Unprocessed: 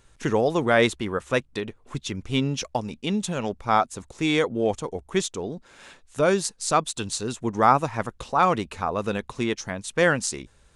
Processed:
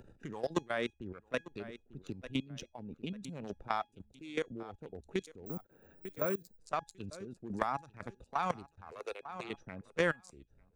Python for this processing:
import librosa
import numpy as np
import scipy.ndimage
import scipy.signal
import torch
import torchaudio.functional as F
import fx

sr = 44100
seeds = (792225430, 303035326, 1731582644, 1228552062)

y = fx.wiener(x, sr, points=41)
y = fx.steep_highpass(y, sr, hz=420.0, slope=36, at=(8.9, 9.48), fade=0.02)
y = fx.noise_reduce_blind(y, sr, reduce_db=7)
y = fx.level_steps(y, sr, step_db=23)
y = fx.chopper(y, sr, hz=2.0, depth_pct=65, duty_pct=25)
y = fx.comb_fb(y, sr, f0_hz=830.0, decay_s=0.21, harmonics='all', damping=0.0, mix_pct=50)
y = fx.echo_feedback(y, sr, ms=896, feedback_pct=36, wet_db=-23.0)
y = fx.resample_bad(y, sr, factor=2, down='filtered', up='zero_stuff', at=(5.46, 6.59))
y = fx.band_squash(y, sr, depth_pct=70)
y = y * librosa.db_to_amplitude(6.5)